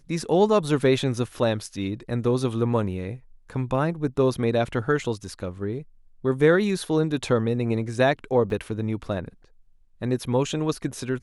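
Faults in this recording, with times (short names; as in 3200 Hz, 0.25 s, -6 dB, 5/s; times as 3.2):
8.5 gap 2.6 ms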